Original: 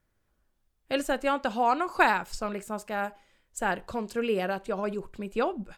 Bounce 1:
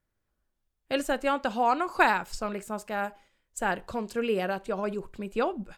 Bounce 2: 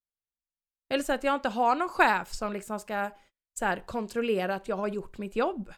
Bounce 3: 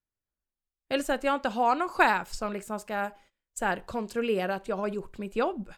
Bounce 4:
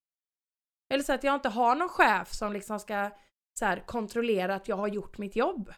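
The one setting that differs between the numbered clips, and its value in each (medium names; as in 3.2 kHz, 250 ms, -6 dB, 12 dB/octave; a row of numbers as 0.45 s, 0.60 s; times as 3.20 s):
gate, range: -6 dB, -33 dB, -20 dB, -60 dB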